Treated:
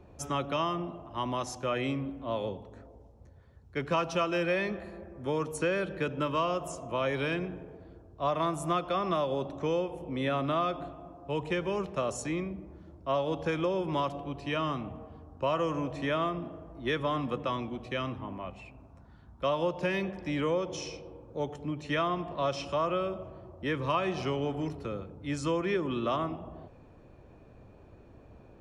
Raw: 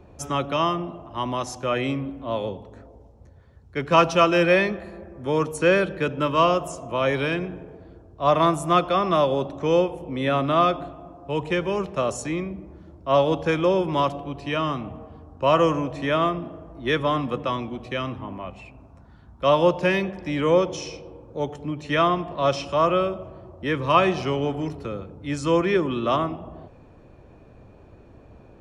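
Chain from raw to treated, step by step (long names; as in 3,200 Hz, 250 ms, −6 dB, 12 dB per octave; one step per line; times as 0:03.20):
downward compressor 4 to 1, threshold −21 dBFS, peak gain reduction 9 dB
level −5 dB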